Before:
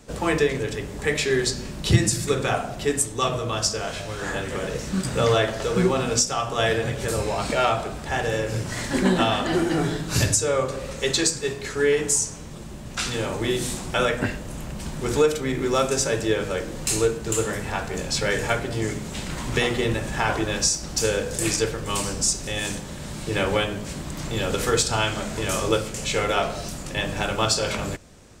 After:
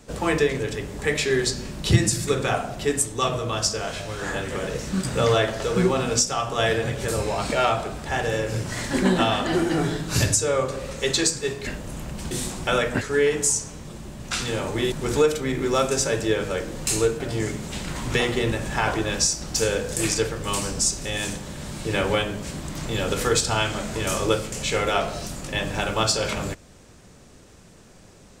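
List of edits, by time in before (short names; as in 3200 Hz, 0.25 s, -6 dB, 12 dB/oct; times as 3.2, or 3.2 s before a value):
11.67–13.58 swap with 14.28–14.92
17.2–18.62 cut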